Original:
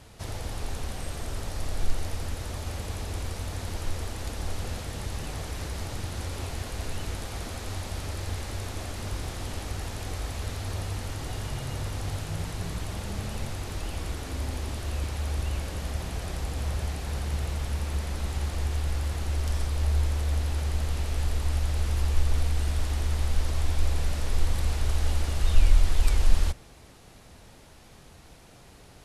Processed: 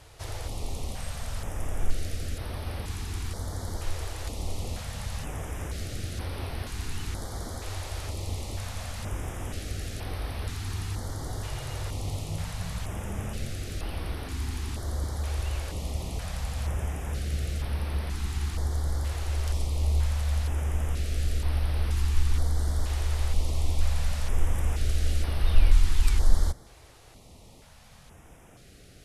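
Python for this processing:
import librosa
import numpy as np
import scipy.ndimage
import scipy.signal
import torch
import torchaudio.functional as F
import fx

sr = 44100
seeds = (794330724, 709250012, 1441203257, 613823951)

y = fx.filter_held_notch(x, sr, hz=2.1, low_hz=210.0, high_hz=7100.0)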